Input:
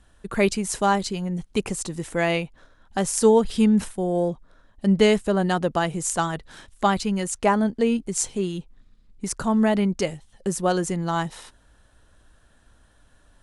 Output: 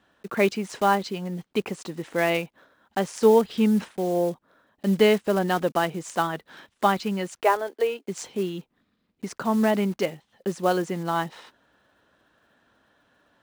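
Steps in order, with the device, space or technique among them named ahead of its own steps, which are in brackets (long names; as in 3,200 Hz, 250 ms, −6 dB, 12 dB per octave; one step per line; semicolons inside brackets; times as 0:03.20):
0:07.43–0:08.08: Butterworth high-pass 350 Hz 36 dB per octave
early digital voice recorder (band-pass filter 210–3,700 Hz; one scale factor per block 5 bits)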